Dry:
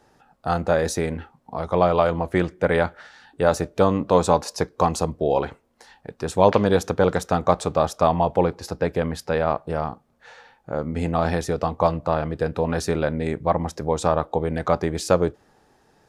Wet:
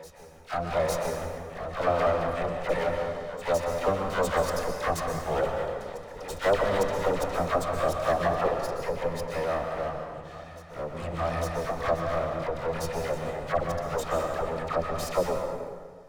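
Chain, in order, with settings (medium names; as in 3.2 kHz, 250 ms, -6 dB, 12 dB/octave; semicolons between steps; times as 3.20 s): comb filter that takes the minimum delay 1.6 ms; phase dispersion lows, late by 80 ms, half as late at 1.1 kHz; reverse echo 855 ms -15.5 dB; plate-style reverb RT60 1.7 s, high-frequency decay 0.7×, pre-delay 110 ms, DRR 3 dB; trim -5 dB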